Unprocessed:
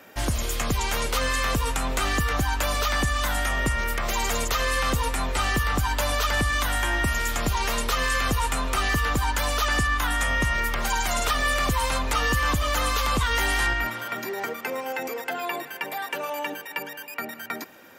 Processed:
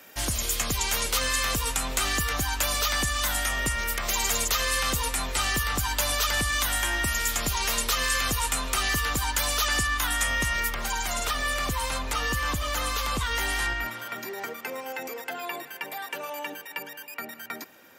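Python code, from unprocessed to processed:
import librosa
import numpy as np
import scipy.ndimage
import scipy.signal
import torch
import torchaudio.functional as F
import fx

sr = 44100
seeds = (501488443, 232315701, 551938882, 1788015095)

y = fx.high_shelf(x, sr, hz=2600.0, db=fx.steps((0.0, 11.5), (10.69, 4.5)))
y = y * 10.0 ** (-5.5 / 20.0)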